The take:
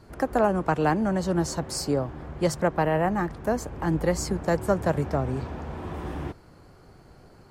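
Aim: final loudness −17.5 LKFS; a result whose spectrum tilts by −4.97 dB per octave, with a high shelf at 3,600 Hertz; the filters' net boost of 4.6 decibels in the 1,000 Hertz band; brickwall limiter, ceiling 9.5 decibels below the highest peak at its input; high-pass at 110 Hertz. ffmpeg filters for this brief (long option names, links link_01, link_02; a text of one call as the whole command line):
ffmpeg -i in.wav -af "highpass=110,equalizer=frequency=1000:width_type=o:gain=6,highshelf=frequency=3600:gain=3.5,volume=11dB,alimiter=limit=-6dB:level=0:latency=1" out.wav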